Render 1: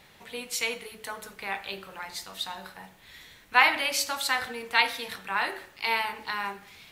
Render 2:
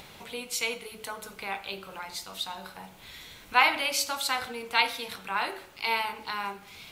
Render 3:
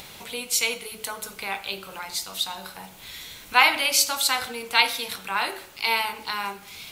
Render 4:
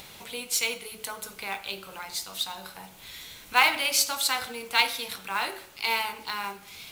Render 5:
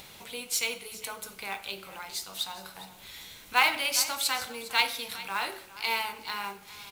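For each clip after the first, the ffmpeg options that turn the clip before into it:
-filter_complex "[0:a]equalizer=f=1.8k:w=7.8:g=-10.5,asplit=2[a][b];[b]acompressor=mode=upward:threshold=-33dB:ratio=2.5,volume=-0.5dB[c];[a][c]amix=inputs=2:normalize=0,volume=-6dB"
-af "highshelf=f=3.6k:g=8.5,volume=2.5dB"
-af "acrusher=bits=4:mode=log:mix=0:aa=0.000001,volume=-3.5dB"
-af "aecho=1:1:407:0.15,volume=-2.5dB"

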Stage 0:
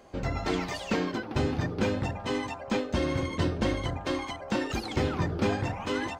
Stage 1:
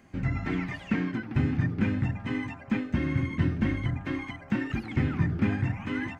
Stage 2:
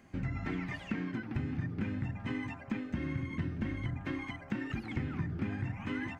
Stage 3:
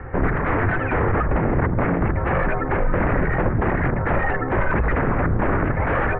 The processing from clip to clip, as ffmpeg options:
-filter_complex "[0:a]acrossover=split=3200[a][b];[b]acompressor=threshold=-56dB:ratio=4:attack=1:release=60[c];[a][c]amix=inputs=2:normalize=0,equalizer=f=125:t=o:w=1:g=9,equalizer=f=250:t=o:w=1:g=7,equalizer=f=500:t=o:w=1:g=-11,equalizer=f=1k:t=o:w=1:g=-4,equalizer=f=2k:t=o:w=1:g=8,equalizer=f=4k:t=o:w=1:g=-6,volume=-3dB"
-af "acompressor=threshold=-30dB:ratio=4,volume=-2.5dB"
-af "aeval=exprs='0.0794*sin(PI/2*7.08*val(0)/0.0794)':c=same,highpass=f=150:t=q:w=0.5412,highpass=f=150:t=q:w=1.307,lowpass=f=2.3k:t=q:w=0.5176,lowpass=f=2.3k:t=q:w=0.7071,lowpass=f=2.3k:t=q:w=1.932,afreqshift=-280,aemphasis=mode=reproduction:type=75kf,volume=7.5dB"

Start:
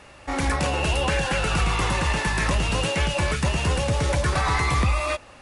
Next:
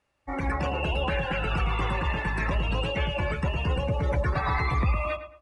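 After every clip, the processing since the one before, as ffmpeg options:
-filter_complex "[0:a]afftdn=nr=24:nf=-29,asplit=2[a][b];[b]adelay=109,lowpass=f=2.4k:p=1,volume=-10dB,asplit=2[c][d];[d]adelay=109,lowpass=f=2.4k:p=1,volume=0.32,asplit=2[e][f];[f]adelay=109,lowpass=f=2.4k:p=1,volume=0.32,asplit=2[g][h];[h]adelay=109,lowpass=f=2.4k:p=1,volume=0.32[i];[a][c][e][g][i]amix=inputs=5:normalize=0,volume=-4dB"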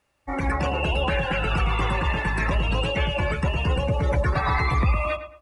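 -af "highshelf=f=7k:g=6.5,volume=3.5dB"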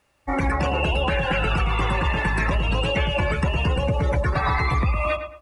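-af "acompressor=threshold=-23dB:ratio=6,volume=5dB"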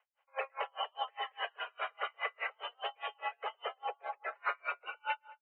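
-af "highpass=f=250:t=q:w=0.5412,highpass=f=250:t=q:w=1.307,lowpass=f=2.7k:t=q:w=0.5176,lowpass=f=2.7k:t=q:w=0.7071,lowpass=f=2.7k:t=q:w=1.932,afreqshift=260,aeval=exprs='val(0)*pow(10,-39*(0.5-0.5*cos(2*PI*4.9*n/s))/20)':c=same,volume=-7dB"

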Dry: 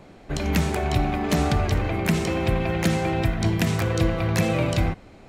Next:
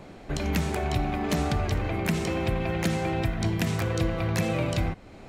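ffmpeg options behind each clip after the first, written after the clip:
-af "acompressor=threshold=-36dB:ratio=1.5,volume=2dB"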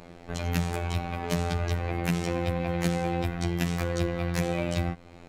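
-af "afftfilt=real='hypot(re,im)*cos(PI*b)':imag='0':win_size=2048:overlap=0.75,volume=1.5dB"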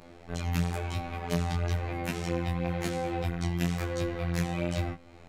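-af "flanger=delay=19.5:depth=4.8:speed=1"

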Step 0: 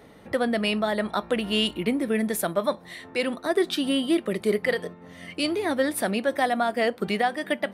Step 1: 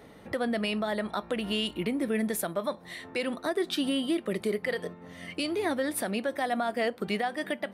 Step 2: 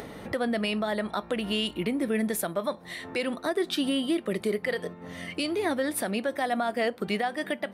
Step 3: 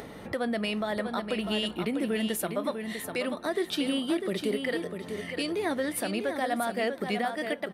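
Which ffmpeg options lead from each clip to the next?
-af "alimiter=limit=-18.5dB:level=0:latency=1:release=206,volume=-1dB"
-af "acompressor=mode=upward:threshold=-34dB:ratio=2.5,volume=1.5dB"
-af "aecho=1:1:648|1296|1944:0.447|0.0715|0.0114,volume=-2dB"

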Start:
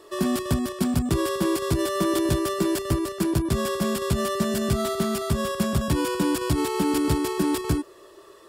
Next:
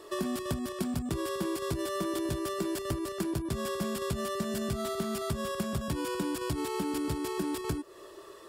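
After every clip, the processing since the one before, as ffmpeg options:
-af "acompressor=threshold=-31dB:ratio=4"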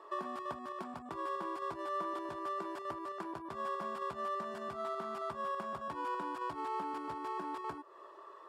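-af "bandpass=f=1k:t=q:w=2.3:csg=0,volume=3.5dB"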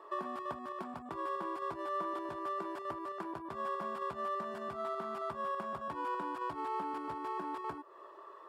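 -af "equalizer=f=6.4k:t=o:w=1.8:g=-4.5,volume=1dB"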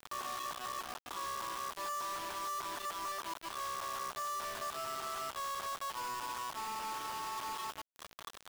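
-af "highpass=840,alimiter=level_in=15.5dB:limit=-24dB:level=0:latency=1:release=113,volume=-15.5dB,acrusher=bits=7:mix=0:aa=0.000001,volume=6dB"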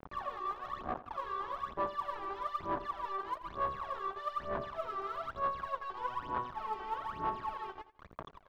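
-af "aresample=16000,adynamicsmooth=sensitivity=6:basefreq=950,aresample=44100,aphaser=in_gain=1:out_gain=1:delay=2.6:decay=0.78:speed=1.1:type=sinusoidal,aecho=1:1:84|168|252:0.168|0.047|0.0132"

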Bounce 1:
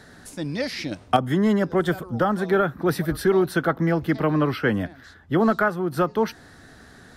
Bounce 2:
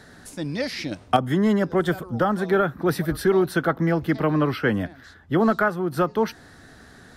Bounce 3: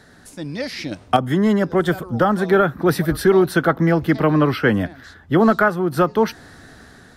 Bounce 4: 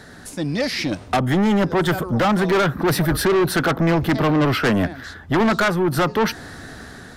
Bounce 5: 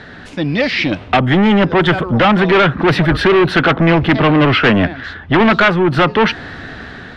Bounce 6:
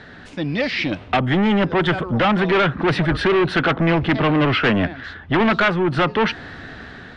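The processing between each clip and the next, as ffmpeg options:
-af anull
-af "dynaudnorm=f=310:g=5:m=7dB,volume=-1dB"
-af "asoftclip=type=tanh:threshold=-21dB,volume=6.5dB"
-af "lowpass=f=2.9k:t=q:w=1.9,volume=6dB"
-af "aresample=22050,aresample=44100,volume=-6dB"

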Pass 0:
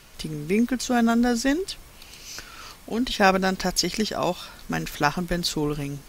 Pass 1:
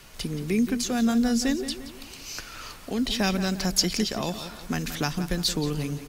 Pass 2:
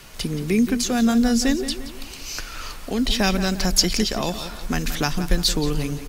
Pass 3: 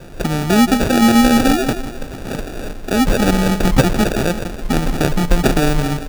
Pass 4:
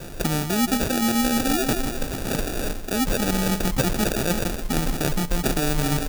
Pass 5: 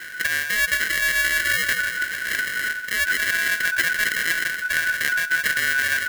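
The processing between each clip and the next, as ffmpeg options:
-filter_complex "[0:a]acrossover=split=260|3000[a][b][c];[b]acompressor=threshold=-33dB:ratio=3[d];[a][d][c]amix=inputs=3:normalize=0,asplit=2[e][f];[f]adelay=174,lowpass=f=4.4k:p=1,volume=-11dB,asplit=2[g][h];[h]adelay=174,lowpass=f=4.4k:p=1,volume=0.45,asplit=2[i][j];[j]adelay=174,lowpass=f=4.4k:p=1,volume=0.45,asplit=2[k][l];[l]adelay=174,lowpass=f=4.4k:p=1,volume=0.45,asplit=2[m][n];[n]adelay=174,lowpass=f=4.4k:p=1,volume=0.45[o];[e][g][i][k][m][o]amix=inputs=6:normalize=0,volume=1dB"
-af "asubboost=boost=3.5:cutoff=63,volume=5dB"
-filter_complex "[0:a]asplit=2[a][b];[b]alimiter=limit=-12.5dB:level=0:latency=1,volume=-2.5dB[c];[a][c]amix=inputs=2:normalize=0,acrusher=samples=42:mix=1:aa=0.000001,volume=2.5dB"
-af "highshelf=f=5k:g=10.5,areverse,acompressor=threshold=-19dB:ratio=6,areverse"
-af "afftfilt=real='real(if(lt(b,272),68*(eq(floor(b/68),0)*3+eq(floor(b/68),1)*0+eq(floor(b/68),2)*1+eq(floor(b/68),3)*2)+mod(b,68),b),0)':imag='imag(if(lt(b,272),68*(eq(floor(b/68),0)*3+eq(floor(b/68),1)*0+eq(floor(b/68),2)*1+eq(floor(b/68),3)*2)+mod(b,68),b),0)':win_size=2048:overlap=0.75"

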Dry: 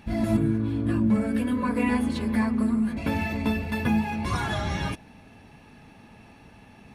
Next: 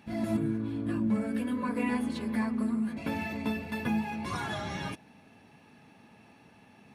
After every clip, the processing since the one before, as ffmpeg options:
-af "highpass=130,volume=-5.5dB"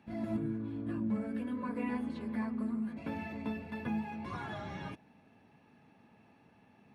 -filter_complex "[0:a]highshelf=f=3.5k:g=-11,acrossover=split=130|5000[a][b][c];[c]alimiter=level_in=34dB:limit=-24dB:level=0:latency=1,volume=-34dB[d];[a][b][d]amix=inputs=3:normalize=0,volume=-5.5dB"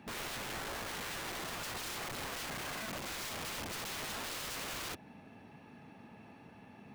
-filter_complex "[0:a]asplit=2[a][b];[b]acompressor=threshold=-46dB:ratio=4,volume=0dB[c];[a][c]amix=inputs=2:normalize=0,aeval=exprs='(mod(84.1*val(0)+1,2)-1)/84.1':c=same,volume=2dB"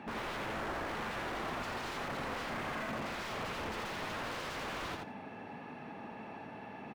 -filter_complex "[0:a]asplit=2[a][b];[b]highpass=f=720:p=1,volume=17dB,asoftclip=type=tanh:threshold=-36dB[c];[a][c]amix=inputs=2:normalize=0,lowpass=f=1.1k:p=1,volume=-6dB,asplit=2[d][e];[e]aecho=0:1:85|170|255:0.631|0.0946|0.0142[f];[d][f]amix=inputs=2:normalize=0,volume=3.5dB"

